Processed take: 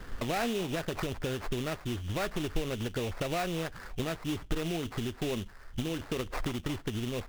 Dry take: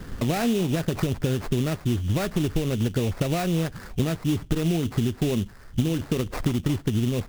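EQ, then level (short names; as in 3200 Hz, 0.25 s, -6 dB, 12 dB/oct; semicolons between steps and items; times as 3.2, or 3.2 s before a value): bell 150 Hz -13 dB 2.9 oct; high shelf 3700 Hz -8 dB; 0.0 dB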